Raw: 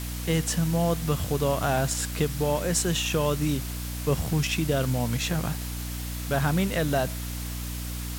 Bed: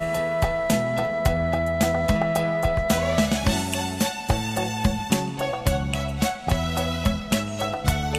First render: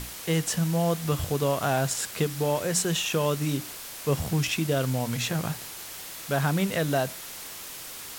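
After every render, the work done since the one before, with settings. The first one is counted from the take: hum notches 60/120/180/240/300 Hz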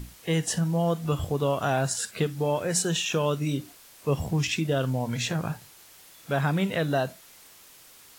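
noise print and reduce 12 dB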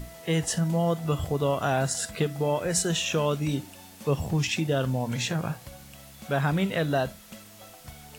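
add bed -23 dB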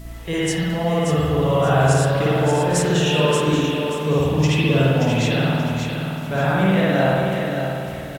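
feedback delay 580 ms, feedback 32%, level -6 dB; spring tank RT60 1.9 s, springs 52 ms, chirp 60 ms, DRR -7.5 dB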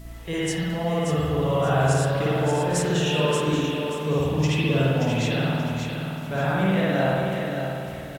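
trim -4.5 dB

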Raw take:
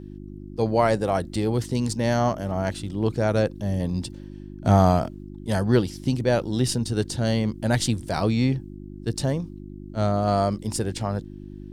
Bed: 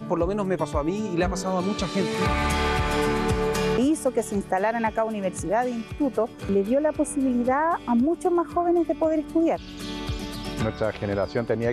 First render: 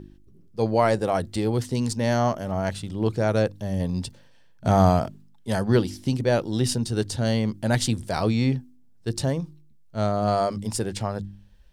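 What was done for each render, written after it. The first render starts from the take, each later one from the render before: de-hum 50 Hz, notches 7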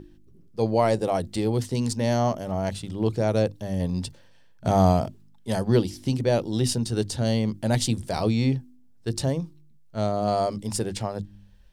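hum notches 50/100/150/200/250 Hz; dynamic bell 1.5 kHz, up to -7 dB, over -42 dBFS, Q 1.6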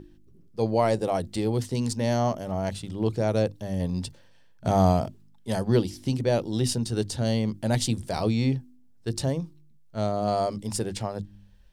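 trim -1.5 dB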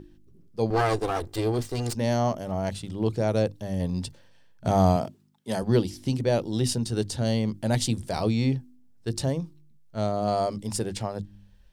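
0.70–1.95 s: comb filter that takes the minimum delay 2.5 ms; 4.96–5.63 s: high-pass 150 Hz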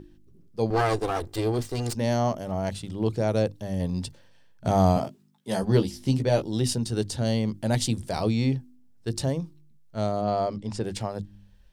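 4.95–6.42 s: doubling 15 ms -5.5 dB; 10.21–10.84 s: distance through air 120 m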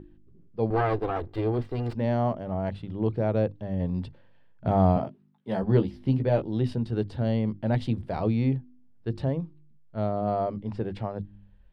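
distance through air 440 m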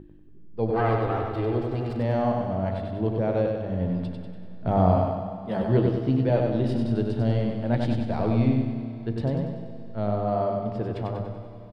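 feedback delay 96 ms, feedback 51%, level -4 dB; Schroeder reverb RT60 3.4 s, combs from 27 ms, DRR 9.5 dB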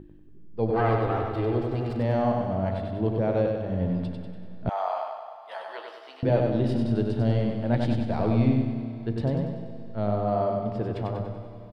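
4.69–6.23 s: high-pass 780 Hz 24 dB/octave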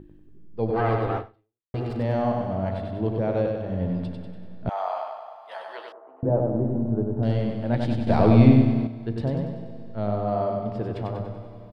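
1.17–1.74 s: fade out exponential; 5.92–7.23 s: low-pass 1.1 kHz 24 dB/octave; 8.07–8.87 s: gain +7.5 dB

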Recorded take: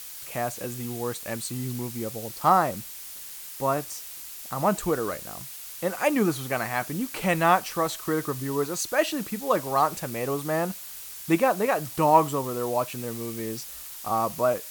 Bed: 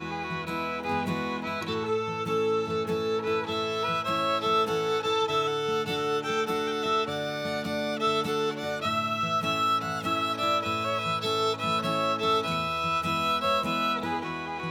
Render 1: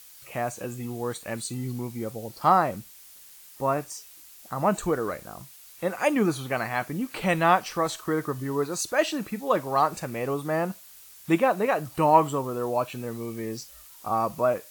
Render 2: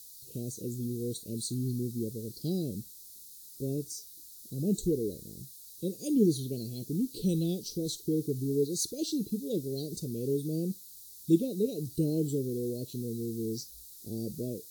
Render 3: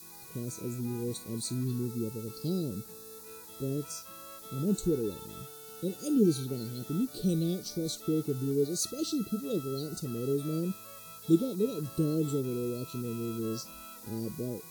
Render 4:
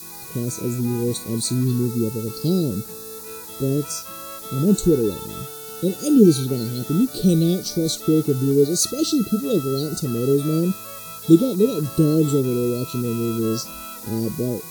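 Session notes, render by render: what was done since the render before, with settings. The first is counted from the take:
noise print and reduce 9 dB
Chebyshev band-stop 430–3900 Hz, order 4; dynamic bell 7.7 kHz, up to -5 dB, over -58 dBFS, Q 4.3
add bed -23 dB
trim +12 dB; peak limiter -1 dBFS, peak gain reduction 1 dB

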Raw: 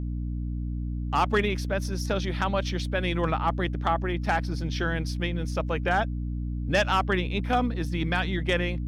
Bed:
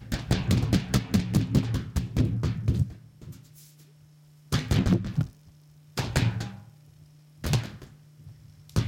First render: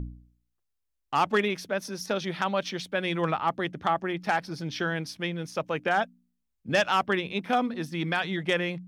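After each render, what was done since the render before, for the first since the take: de-hum 60 Hz, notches 5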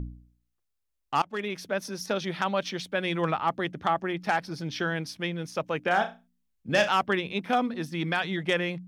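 1.22–1.70 s: fade in, from -23 dB; 5.87–6.89 s: flutter echo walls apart 5.8 m, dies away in 0.26 s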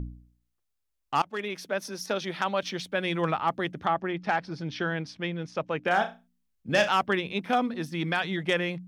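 1.30–2.63 s: Bessel high-pass 210 Hz; 3.85–5.84 s: distance through air 110 m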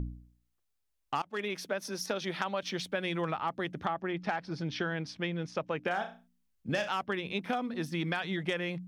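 compression 6:1, threshold -29 dBFS, peak gain reduction 11 dB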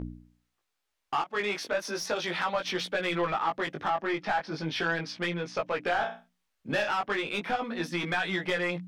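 overdrive pedal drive 20 dB, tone 2.9 kHz, clips at -15 dBFS; chorus 0.36 Hz, delay 16.5 ms, depth 3.3 ms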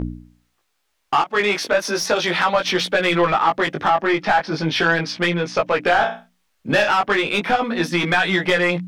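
trim +11.5 dB

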